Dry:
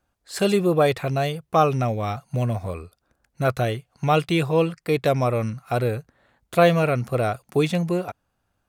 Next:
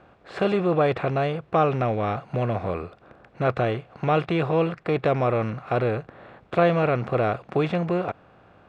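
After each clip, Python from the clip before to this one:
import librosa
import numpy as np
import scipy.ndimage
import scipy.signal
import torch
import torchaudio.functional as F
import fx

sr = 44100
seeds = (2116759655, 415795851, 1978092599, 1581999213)

y = fx.bin_compress(x, sr, power=0.6)
y = scipy.signal.sosfilt(scipy.signal.butter(2, 2500.0, 'lowpass', fs=sr, output='sos'), y)
y = y * 10.0 ** (-4.5 / 20.0)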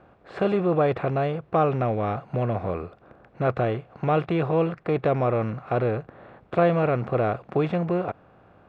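y = fx.high_shelf(x, sr, hz=2200.0, db=-8.5)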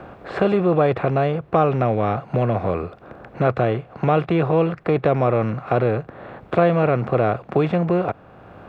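y = fx.band_squash(x, sr, depth_pct=40)
y = y * 10.0 ** (4.5 / 20.0)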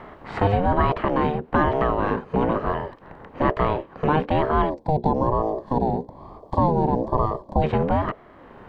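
y = fx.octave_divider(x, sr, octaves=1, level_db=-3.0)
y = fx.spec_box(y, sr, start_s=4.7, length_s=2.92, low_hz=690.0, high_hz=3600.0, gain_db=-20)
y = fx.ring_lfo(y, sr, carrier_hz=420.0, swing_pct=30, hz=1.1)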